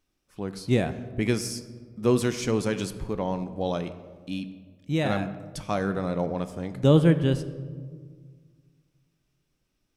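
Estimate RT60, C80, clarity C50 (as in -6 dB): 1.7 s, 14.5 dB, 13.0 dB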